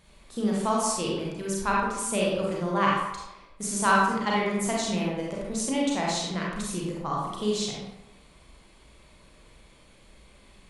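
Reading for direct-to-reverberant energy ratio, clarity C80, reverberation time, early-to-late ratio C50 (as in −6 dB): −4.0 dB, 3.0 dB, 0.95 s, −1.5 dB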